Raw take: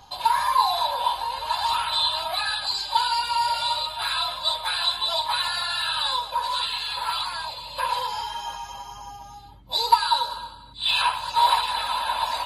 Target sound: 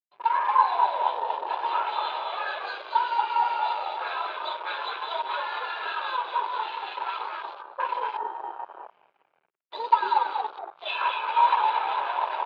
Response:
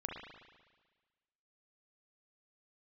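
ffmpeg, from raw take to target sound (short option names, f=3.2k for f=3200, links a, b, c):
-filter_complex "[0:a]acrossover=split=1600[a][b];[a]aeval=exprs='val(0)*(1-0.5/2+0.5/2*cos(2*PI*5*n/s))':c=same[c];[b]aeval=exprs='val(0)*(1-0.5/2-0.5/2*cos(2*PI*5*n/s))':c=same[d];[c][d]amix=inputs=2:normalize=0,asplit=8[e][f][g][h][i][j][k][l];[f]adelay=234,afreqshift=-79,volume=-4dB[m];[g]adelay=468,afreqshift=-158,volume=-9.8dB[n];[h]adelay=702,afreqshift=-237,volume=-15.7dB[o];[i]adelay=936,afreqshift=-316,volume=-21.5dB[p];[j]adelay=1170,afreqshift=-395,volume=-27.4dB[q];[k]adelay=1404,afreqshift=-474,volume=-33.2dB[r];[l]adelay=1638,afreqshift=-553,volume=-39.1dB[s];[e][m][n][o][p][q][r][s]amix=inputs=8:normalize=0,asplit=2[t][u];[1:a]atrim=start_sample=2205,adelay=93[v];[u][v]afir=irnorm=-1:irlink=0,volume=-17.5dB[w];[t][w]amix=inputs=2:normalize=0,aeval=exprs='sgn(val(0))*max(abs(val(0))-0.0133,0)':c=same,lowshelf=f=220:g=-7.5,afwtdn=0.0141,highpass=f=160:w=0.5412,highpass=f=160:w=1.3066,equalizer=f=240:t=q:w=4:g=-10,equalizer=f=390:t=q:w=4:g=5,equalizer=f=750:t=q:w=4:g=-5,equalizer=f=1.9k:t=q:w=4:g=-5,lowpass=f=2.4k:w=0.5412,lowpass=f=2.4k:w=1.3066,volume=3.5dB"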